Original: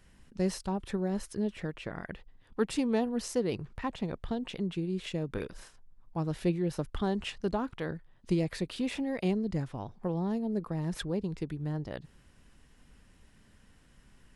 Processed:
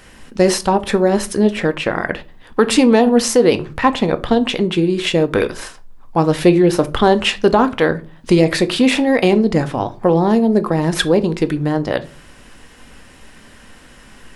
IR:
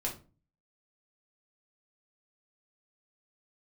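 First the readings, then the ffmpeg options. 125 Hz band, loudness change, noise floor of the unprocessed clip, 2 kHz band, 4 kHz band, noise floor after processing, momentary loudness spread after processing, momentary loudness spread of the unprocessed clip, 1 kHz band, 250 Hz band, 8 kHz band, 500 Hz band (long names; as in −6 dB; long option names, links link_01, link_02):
+13.5 dB, +18.0 dB, −61 dBFS, +21.5 dB, +21.0 dB, −43 dBFS, 10 LU, 10 LU, +21.5 dB, +17.0 dB, +20.0 dB, +20.0 dB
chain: -filter_complex "[0:a]bass=frequency=250:gain=-10,treble=frequency=4000:gain=-2,asplit=2[link_01][link_02];[1:a]atrim=start_sample=2205[link_03];[link_02][link_03]afir=irnorm=-1:irlink=0,volume=-9dB[link_04];[link_01][link_04]amix=inputs=2:normalize=0,alimiter=level_in=20.5dB:limit=-1dB:release=50:level=0:latency=1,volume=-1dB"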